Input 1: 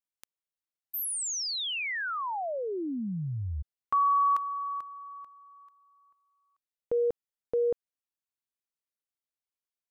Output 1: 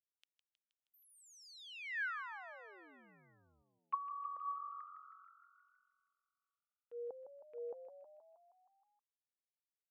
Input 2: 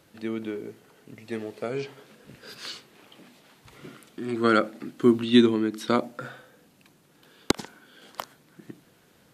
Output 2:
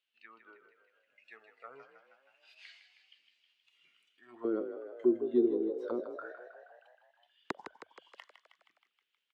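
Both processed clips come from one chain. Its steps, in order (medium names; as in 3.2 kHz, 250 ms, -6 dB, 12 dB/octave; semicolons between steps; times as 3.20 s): auto-wah 380–3000 Hz, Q 4.4, down, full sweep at -20 dBFS; spectral noise reduction 9 dB; frequency-shifting echo 158 ms, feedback 63%, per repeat +44 Hz, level -9.5 dB; trim -4.5 dB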